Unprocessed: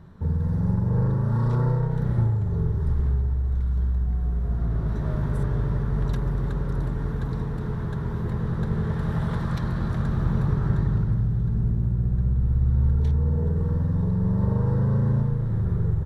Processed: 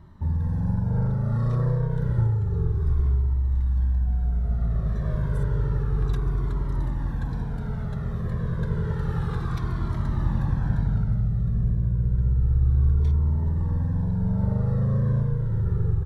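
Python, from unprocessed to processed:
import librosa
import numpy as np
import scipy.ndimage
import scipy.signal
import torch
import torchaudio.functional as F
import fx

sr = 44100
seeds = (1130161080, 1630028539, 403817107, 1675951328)

y = fx.comb_cascade(x, sr, direction='falling', hz=0.3)
y = F.gain(torch.from_numpy(y), 2.5).numpy()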